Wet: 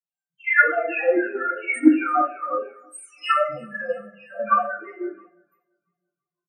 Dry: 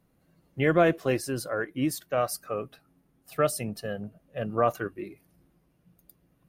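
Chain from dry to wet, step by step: delay that grows with frequency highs early, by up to 575 ms; high-pass 180 Hz 24 dB/octave; high-order bell 1.4 kHz +14.5 dB 2.5 oct; hum notches 50/100/150/200/250/300 Hz; compression 5:1, threshold -24 dBFS, peak gain reduction 15 dB; loudest bins only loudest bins 2; harmonic tremolo 2.6 Hz, depth 70%, crossover 490 Hz; feedback delay 337 ms, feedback 58%, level -19 dB; reverberation RT60 0.55 s, pre-delay 4 ms, DRR -5 dB; three bands expanded up and down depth 100%; trim +4.5 dB

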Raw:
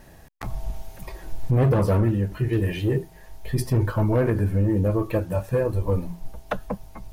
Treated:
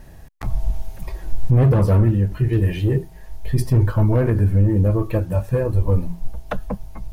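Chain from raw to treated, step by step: bass shelf 140 Hz +10 dB

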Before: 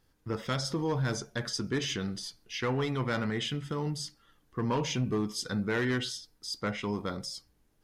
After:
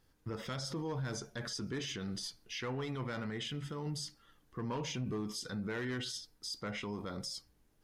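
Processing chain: peak limiter -30.5 dBFS, peak gain reduction 9.5 dB; trim -1 dB

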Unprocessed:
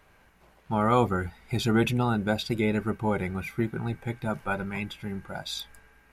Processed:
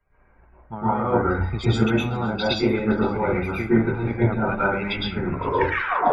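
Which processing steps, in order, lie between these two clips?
tape stop on the ending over 1.07 s; reverse; compression 8:1, threshold -38 dBFS, peak gain reduction 20.5 dB; reverse; loudest bins only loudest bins 64; transient shaper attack +10 dB, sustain +6 dB; on a send: band-passed feedback delay 519 ms, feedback 52%, band-pass 2.5 kHz, level -13 dB; on the sum: plate-style reverb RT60 0.54 s, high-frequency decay 0.45×, pre-delay 100 ms, DRR -7.5 dB; three bands expanded up and down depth 70%; trim +8 dB

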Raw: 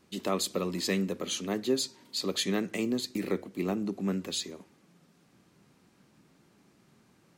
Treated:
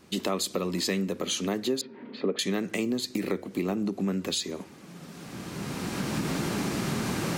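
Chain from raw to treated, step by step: recorder AGC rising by 16 dB/s; 1.81–2.39 s: cabinet simulation 160–2300 Hz, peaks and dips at 230 Hz +10 dB, 440 Hz +9 dB, 1 kHz -3 dB; compression 2.5:1, threshold -36 dBFS, peak gain reduction 10 dB; trim +8 dB

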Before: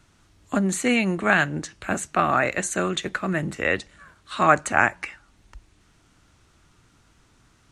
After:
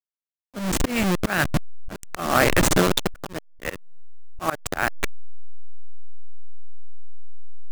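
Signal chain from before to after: send-on-delta sampling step -18.5 dBFS; slow attack 314 ms; trim +7 dB

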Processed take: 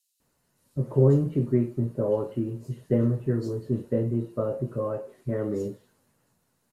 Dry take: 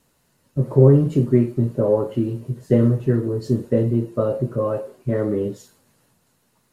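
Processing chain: bands offset in time highs, lows 200 ms, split 3.2 kHz; trim -7 dB

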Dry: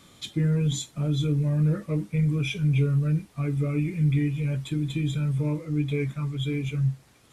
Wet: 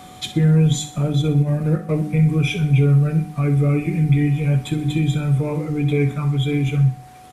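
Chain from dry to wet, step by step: peaking EQ 4.7 kHz -4.5 dB 2 oct; hum notches 50/100/150/200/250/300 Hz; 1.08–1.91 s: transient shaper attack -2 dB, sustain -8 dB; in parallel at -1 dB: compression, threshold -33 dBFS, peak gain reduction 13.5 dB; on the sum: whistle 740 Hz -47 dBFS; on a send: feedback delay 63 ms, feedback 41%, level -12 dB; on the sum: trim +6.5 dB

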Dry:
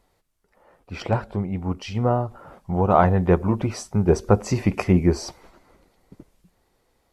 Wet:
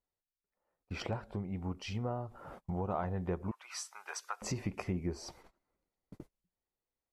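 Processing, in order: gate -46 dBFS, range -25 dB; 3.51–4.42 s: high-pass 1.1 kHz 24 dB/octave; compression 3:1, threshold -34 dBFS, peak gain reduction 17 dB; trim -3.5 dB

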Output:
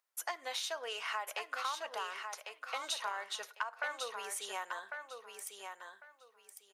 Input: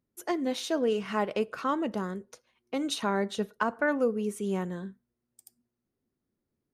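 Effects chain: high-pass 800 Hz 24 dB/octave; compression 6:1, threshold -41 dBFS, peak gain reduction 16.5 dB; on a send: feedback delay 1100 ms, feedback 21%, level -6 dB; on the sum: trim +5.5 dB

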